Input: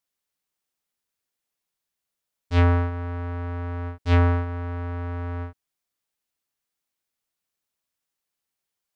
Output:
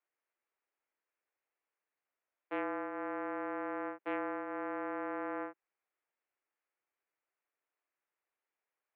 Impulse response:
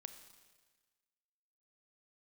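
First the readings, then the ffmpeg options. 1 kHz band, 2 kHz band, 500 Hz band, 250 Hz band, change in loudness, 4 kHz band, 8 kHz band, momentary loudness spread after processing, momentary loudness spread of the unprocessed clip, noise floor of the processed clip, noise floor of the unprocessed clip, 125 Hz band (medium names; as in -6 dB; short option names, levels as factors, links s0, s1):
-6.5 dB, -7.5 dB, -7.0 dB, -10.0 dB, -13.5 dB, under -20 dB, no reading, 3 LU, 12 LU, under -85 dBFS, -85 dBFS, under -40 dB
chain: -af "acompressor=threshold=0.0398:ratio=12,highpass=f=260:t=q:w=0.5412,highpass=f=260:t=q:w=1.307,lowpass=f=2400:t=q:w=0.5176,lowpass=f=2400:t=q:w=0.7071,lowpass=f=2400:t=q:w=1.932,afreqshift=58"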